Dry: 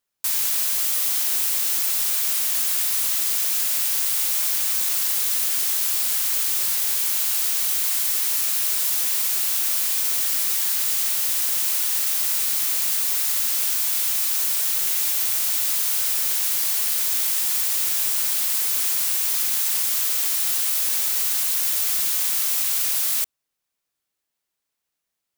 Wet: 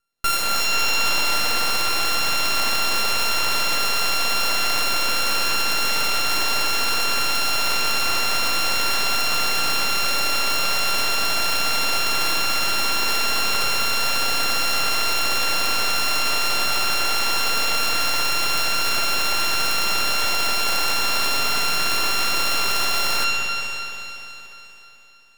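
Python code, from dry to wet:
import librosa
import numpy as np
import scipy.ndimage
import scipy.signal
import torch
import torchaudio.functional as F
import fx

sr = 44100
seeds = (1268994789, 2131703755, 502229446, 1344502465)

y = np.r_[np.sort(x[:len(x) // 32 * 32].reshape(-1, 32), axis=1).ravel(), x[len(x) // 32 * 32:]]
y = fx.rev_spring(y, sr, rt60_s=3.6, pass_ms=(59,), chirp_ms=45, drr_db=-2.0)
y = np.maximum(y, 0.0)
y = y * 10.0 ** (6.5 / 20.0)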